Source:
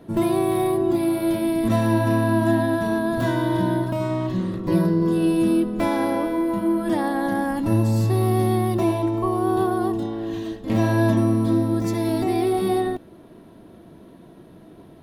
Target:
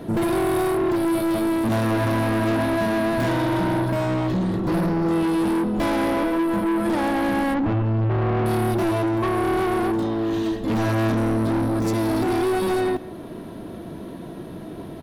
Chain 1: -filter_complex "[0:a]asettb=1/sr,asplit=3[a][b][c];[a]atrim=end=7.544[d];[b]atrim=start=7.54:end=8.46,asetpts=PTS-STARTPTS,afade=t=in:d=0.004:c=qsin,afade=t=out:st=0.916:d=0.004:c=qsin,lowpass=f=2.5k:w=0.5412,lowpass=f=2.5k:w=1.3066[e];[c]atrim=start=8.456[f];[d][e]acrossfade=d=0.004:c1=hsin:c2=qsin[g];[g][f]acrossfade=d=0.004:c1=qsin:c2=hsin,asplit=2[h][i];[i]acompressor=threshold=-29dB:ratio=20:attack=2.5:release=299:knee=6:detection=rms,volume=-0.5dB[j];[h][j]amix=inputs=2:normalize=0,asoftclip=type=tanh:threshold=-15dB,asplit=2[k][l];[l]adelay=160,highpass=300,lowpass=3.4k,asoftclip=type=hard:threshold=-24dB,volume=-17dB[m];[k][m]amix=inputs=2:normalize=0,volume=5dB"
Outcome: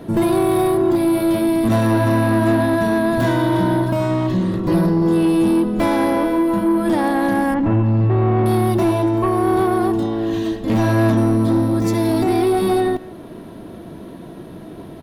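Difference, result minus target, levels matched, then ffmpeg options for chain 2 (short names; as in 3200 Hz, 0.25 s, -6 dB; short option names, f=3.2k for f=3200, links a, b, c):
soft clip: distortion -8 dB
-filter_complex "[0:a]asettb=1/sr,asplit=3[a][b][c];[a]atrim=end=7.544[d];[b]atrim=start=7.54:end=8.46,asetpts=PTS-STARTPTS,afade=t=in:d=0.004:c=qsin,afade=t=out:st=0.916:d=0.004:c=qsin,lowpass=f=2.5k:w=0.5412,lowpass=f=2.5k:w=1.3066[e];[c]atrim=start=8.456[f];[d][e]acrossfade=d=0.004:c1=hsin:c2=qsin[g];[g][f]acrossfade=d=0.004:c1=qsin:c2=hsin,asplit=2[h][i];[i]acompressor=threshold=-29dB:ratio=20:attack=2.5:release=299:knee=6:detection=rms,volume=-0.5dB[j];[h][j]amix=inputs=2:normalize=0,asoftclip=type=tanh:threshold=-24dB,asplit=2[k][l];[l]adelay=160,highpass=300,lowpass=3.4k,asoftclip=type=hard:threshold=-24dB,volume=-17dB[m];[k][m]amix=inputs=2:normalize=0,volume=5dB"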